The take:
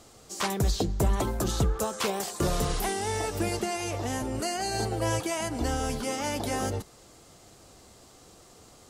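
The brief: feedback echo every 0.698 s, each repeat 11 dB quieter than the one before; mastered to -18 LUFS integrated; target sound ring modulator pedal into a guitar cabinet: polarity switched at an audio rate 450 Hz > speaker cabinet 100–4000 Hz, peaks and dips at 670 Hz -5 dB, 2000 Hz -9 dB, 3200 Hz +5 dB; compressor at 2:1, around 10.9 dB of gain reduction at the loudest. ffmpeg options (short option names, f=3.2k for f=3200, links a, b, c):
-af "acompressor=threshold=-41dB:ratio=2,aecho=1:1:698|1396|2094:0.282|0.0789|0.0221,aeval=exprs='val(0)*sgn(sin(2*PI*450*n/s))':c=same,highpass=100,equalizer=f=670:t=q:w=4:g=-5,equalizer=f=2k:t=q:w=4:g=-9,equalizer=f=3.2k:t=q:w=4:g=5,lowpass=f=4k:w=0.5412,lowpass=f=4k:w=1.3066,volume=20.5dB"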